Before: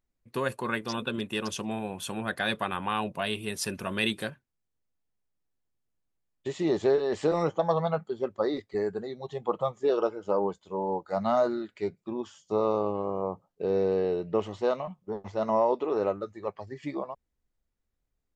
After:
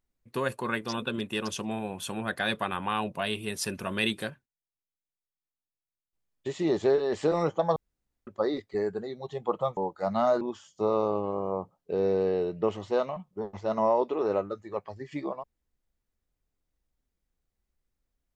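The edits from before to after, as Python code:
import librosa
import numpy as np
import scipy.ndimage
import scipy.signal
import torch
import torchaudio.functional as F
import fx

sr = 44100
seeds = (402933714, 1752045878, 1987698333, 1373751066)

y = fx.edit(x, sr, fx.fade_down_up(start_s=4.04, length_s=2.51, db=-16.5, fade_s=0.42, curve='log'),
    fx.room_tone_fill(start_s=7.76, length_s=0.51),
    fx.cut(start_s=9.77, length_s=1.1),
    fx.cut(start_s=11.51, length_s=0.61), tone=tone)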